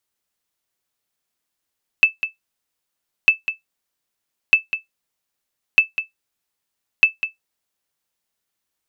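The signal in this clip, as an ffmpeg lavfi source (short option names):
-f lavfi -i "aevalsrc='0.75*(sin(2*PI*2630*mod(t,1.25))*exp(-6.91*mod(t,1.25)/0.14)+0.282*sin(2*PI*2630*max(mod(t,1.25)-0.2,0))*exp(-6.91*max(mod(t,1.25)-0.2,0)/0.14))':d=6.25:s=44100"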